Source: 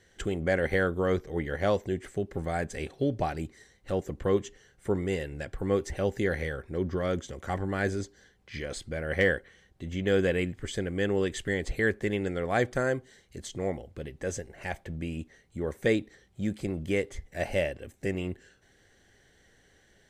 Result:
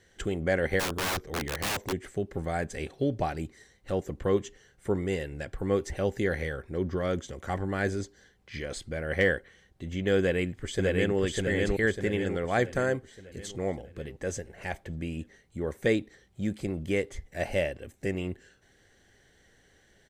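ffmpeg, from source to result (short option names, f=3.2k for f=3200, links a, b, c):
-filter_complex "[0:a]asplit=3[a][b][c];[a]afade=t=out:st=0.79:d=0.02[d];[b]aeval=exprs='(mod(17.8*val(0)+1,2)-1)/17.8':c=same,afade=t=in:st=0.79:d=0.02,afade=t=out:st=1.91:d=0.02[e];[c]afade=t=in:st=1.91:d=0.02[f];[d][e][f]amix=inputs=3:normalize=0,asplit=2[g][h];[h]afade=t=in:st=10.18:d=0.01,afade=t=out:st=11.16:d=0.01,aecho=0:1:600|1200|1800|2400|3000|3600|4200:0.891251|0.445625|0.222813|0.111406|0.0557032|0.0278516|0.0139258[i];[g][i]amix=inputs=2:normalize=0"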